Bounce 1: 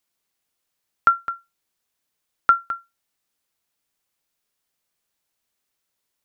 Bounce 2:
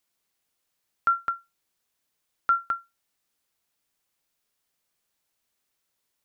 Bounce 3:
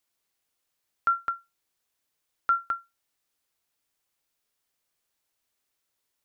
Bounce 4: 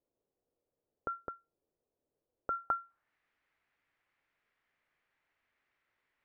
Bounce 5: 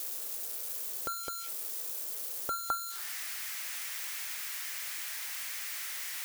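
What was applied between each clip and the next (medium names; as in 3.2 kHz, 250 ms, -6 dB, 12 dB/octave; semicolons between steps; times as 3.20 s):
peak limiter -15 dBFS, peak gain reduction 10 dB
peaking EQ 190 Hz -5 dB 0.41 oct; trim -1.5 dB
low-pass sweep 490 Hz -> 2 kHz, 2.45–3.14 s; trim +2 dB
zero-crossing glitches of -27 dBFS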